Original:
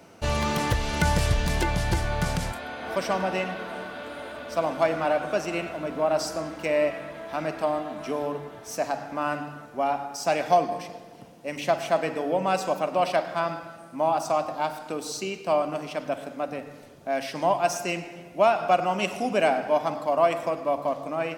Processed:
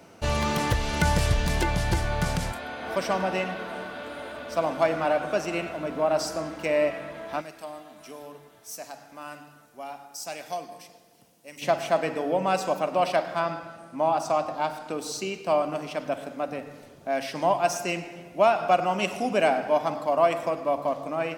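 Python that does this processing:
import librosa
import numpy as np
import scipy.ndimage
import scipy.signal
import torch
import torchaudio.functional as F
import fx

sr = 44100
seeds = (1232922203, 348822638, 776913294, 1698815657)

y = fx.pre_emphasis(x, sr, coefficient=0.8, at=(7.4, 11.61), fade=0.02)
y = fx.high_shelf(y, sr, hz=12000.0, db=-8.5, at=(13.42, 14.98))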